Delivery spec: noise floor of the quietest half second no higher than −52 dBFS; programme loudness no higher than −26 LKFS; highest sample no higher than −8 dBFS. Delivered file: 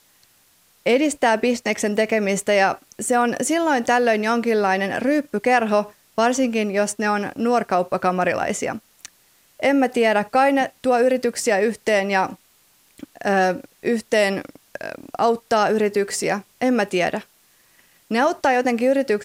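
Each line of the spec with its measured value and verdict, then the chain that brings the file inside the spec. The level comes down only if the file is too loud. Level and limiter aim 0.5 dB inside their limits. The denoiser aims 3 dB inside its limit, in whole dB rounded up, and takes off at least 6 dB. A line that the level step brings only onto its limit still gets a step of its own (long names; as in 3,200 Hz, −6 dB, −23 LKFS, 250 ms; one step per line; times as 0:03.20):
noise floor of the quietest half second −58 dBFS: in spec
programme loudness −20.5 LKFS: out of spec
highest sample −6.0 dBFS: out of spec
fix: level −6 dB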